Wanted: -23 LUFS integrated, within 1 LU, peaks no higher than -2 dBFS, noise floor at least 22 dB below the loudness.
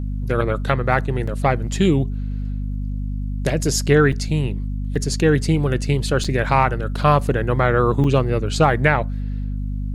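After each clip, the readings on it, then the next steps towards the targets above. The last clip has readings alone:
dropouts 5; longest dropout 5.0 ms; hum 50 Hz; highest harmonic 250 Hz; hum level -22 dBFS; loudness -20.0 LUFS; peak level -1.5 dBFS; loudness target -23.0 LUFS
-> interpolate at 1.27/4.12/4.95/6.24/8.04 s, 5 ms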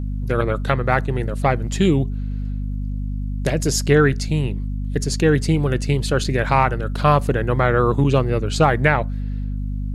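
dropouts 0; hum 50 Hz; highest harmonic 250 Hz; hum level -22 dBFS
-> de-hum 50 Hz, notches 5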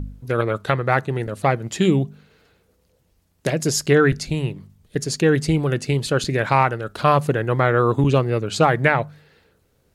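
hum not found; loudness -20.5 LUFS; peak level -2.5 dBFS; loudness target -23.0 LUFS
-> trim -2.5 dB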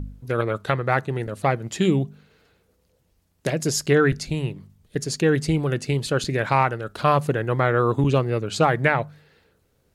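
loudness -23.0 LUFS; peak level -5.0 dBFS; noise floor -66 dBFS

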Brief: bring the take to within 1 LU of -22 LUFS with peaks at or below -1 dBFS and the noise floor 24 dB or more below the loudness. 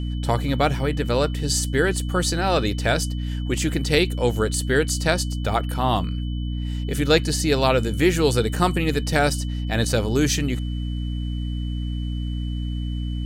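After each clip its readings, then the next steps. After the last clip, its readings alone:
hum 60 Hz; highest harmonic 300 Hz; hum level -24 dBFS; steady tone 3 kHz; tone level -43 dBFS; loudness -23.0 LUFS; peak level -3.5 dBFS; loudness target -22.0 LUFS
-> de-hum 60 Hz, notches 5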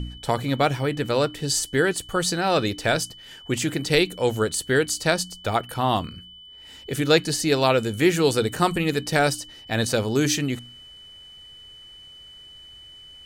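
hum not found; steady tone 3 kHz; tone level -43 dBFS
-> band-stop 3 kHz, Q 30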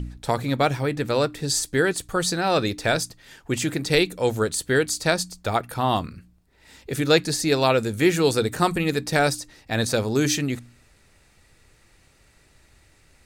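steady tone not found; loudness -23.0 LUFS; peak level -4.5 dBFS; loudness target -22.0 LUFS
-> trim +1 dB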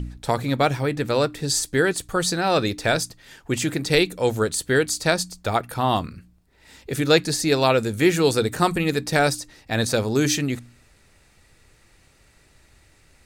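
loudness -22.0 LUFS; peak level -3.5 dBFS; noise floor -57 dBFS

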